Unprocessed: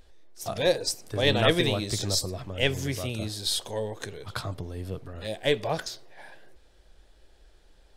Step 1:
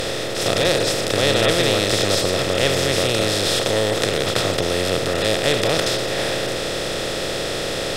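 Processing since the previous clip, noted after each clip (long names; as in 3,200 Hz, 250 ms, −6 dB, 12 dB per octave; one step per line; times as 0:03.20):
compressor on every frequency bin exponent 0.2
level −1.5 dB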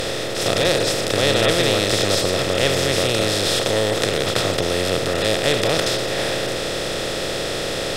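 no processing that can be heard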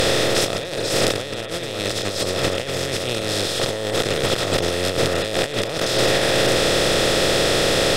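compressor whose output falls as the input rises −23 dBFS, ratio −0.5
level +3 dB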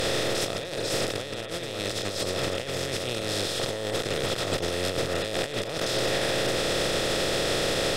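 brickwall limiter −10.5 dBFS, peak gain reduction 9 dB
level −6 dB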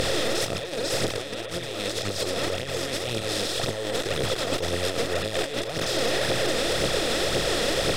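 phase shifter 1.9 Hz, delay 4.5 ms, feedback 50%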